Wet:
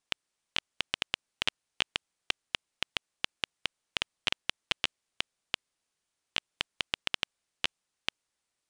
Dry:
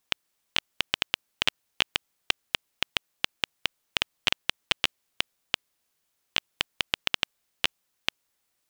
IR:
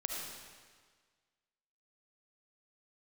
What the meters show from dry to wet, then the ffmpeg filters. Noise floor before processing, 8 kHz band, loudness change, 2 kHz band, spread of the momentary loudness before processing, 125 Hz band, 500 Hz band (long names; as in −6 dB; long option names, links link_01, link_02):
−77 dBFS, −5.0 dB, −5.0 dB, −5.0 dB, 6 LU, −5.0 dB, −5.0 dB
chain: -af "aresample=22050,aresample=44100,volume=-5dB"